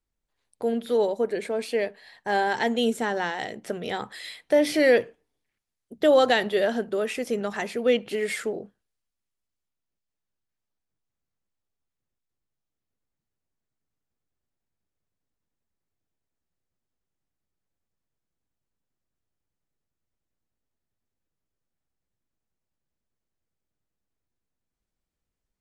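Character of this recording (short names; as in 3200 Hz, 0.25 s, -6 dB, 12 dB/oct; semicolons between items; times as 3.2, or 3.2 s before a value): noise floor -85 dBFS; spectral tilt -2.0 dB/oct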